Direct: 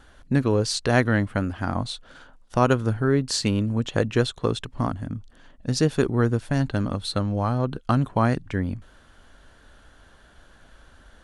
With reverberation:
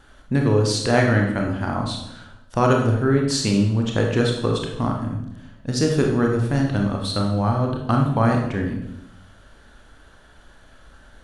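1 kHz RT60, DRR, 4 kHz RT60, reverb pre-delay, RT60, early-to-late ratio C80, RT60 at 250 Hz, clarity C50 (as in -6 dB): 0.75 s, 0.5 dB, 0.75 s, 24 ms, 0.85 s, 7.0 dB, 1.0 s, 4.5 dB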